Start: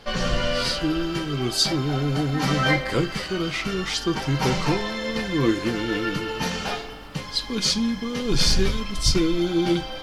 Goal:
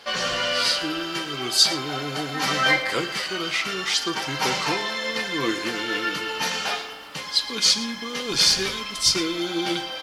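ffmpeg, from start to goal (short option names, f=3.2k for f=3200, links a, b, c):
-af "highpass=f=990:p=1,aecho=1:1:113:0.15,volume=4.5dB"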